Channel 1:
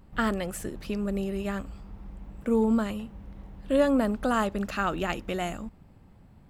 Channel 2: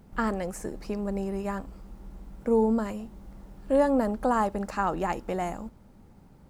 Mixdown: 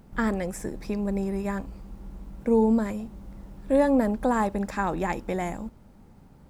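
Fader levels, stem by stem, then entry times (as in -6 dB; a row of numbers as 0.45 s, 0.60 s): -8.0 dB, +1.0 dB; 0.00 s, 0.00 s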